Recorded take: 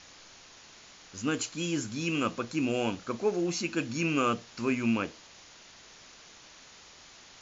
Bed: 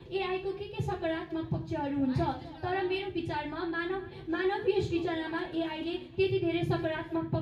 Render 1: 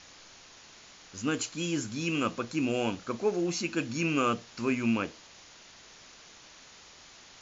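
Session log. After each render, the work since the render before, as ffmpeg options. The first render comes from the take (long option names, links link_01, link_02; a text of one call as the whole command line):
ffmpeg -i in.wav -af anull out.wav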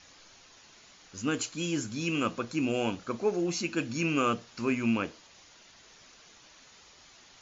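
ffmpeg -i in.wav -af "afftdn=noise_reduction=6:noise_floor=-54" out.wav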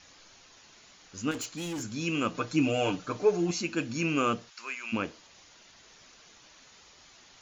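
ffmpeg -i in.wav -filter_complex "[0:a]asettb=1/sr,asplit=3[link_01][link_02][link_03];[link_01]atrim=end=1.314[link_04];[link_02]atrim=start=1.31:end=1.83,asetpts=PTS-STARTPTS,afade=type=in:duration=0.004:curve=qsin,afade=type=out:start_time=0.516:duration=0.004:curve=qsin,asoftclip=type=hard:threshold=-32.5dB[link_05];[link_03]atrim=start=1.826[link_06];[link_04][link_05]acrossfade=duration=0.004:curve1=hsin:curve2=qsin[link_07];[link_07][link_06]acrossfade=duration=0.004:curve1=qsin:curve2=hsin,asettb=1/sr,asplit=3[link_08][link_09][link_10];[link_08]atrim=end=2.344[link_11];[link_09]atrim=start=2.34:end=3.51,asetpts=PTS-STARTPTS,afade=type=in:duration=0.004:curve=qsin,afade=type=out:start_time=1.166:duration=0.004:curve=qsin,aecho=1:1:6.7:0.98,atrim=end_sample=51597[link_12];[link_10]atrim=start=3.506[link_13];[link_11][link_12]acrossfade=duration=0.004:curve1=hsin:curve2=qsin[link_14];[link_14][link_13]acrossfade=duration=0.004:curve1=qsin:curve2=hsin,asplit=3[link_15][link_16][link_17];[link_15]afade=type=out:start_time=4.49:duration=0.02[link_18];[link_16]highpass=1200,afade=type=in:start_time=4.49:duration=0.02,afade=type=out:start_time=4.92:duration=0.02[link_19];[link_17]afade=type=in:start_time=4.92:duration=0.02[link_20];[link_18][link_19][link_20]amix=inputs=3:normalize=0" out.wav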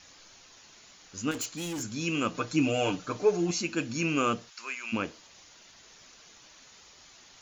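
ffmpeg -i in.wav -af "highshelf=frequency=7500:gain=7" out.wav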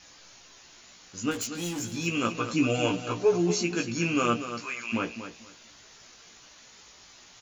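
ffmpeg -i in.wav -filter_complex "[0:a]asplit=2[link_01][link_02];[link_02]adelay=17,volume=-4dB[link_03];[link_01][link_03]amix=inputs=2:normalize=0,aecho=1:1:236|472|708:0.299|0.0657|0.0144" out.wav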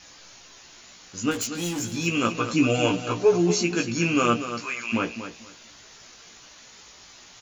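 ffmpeg -i in.wav -af "volume=4dB" out.wav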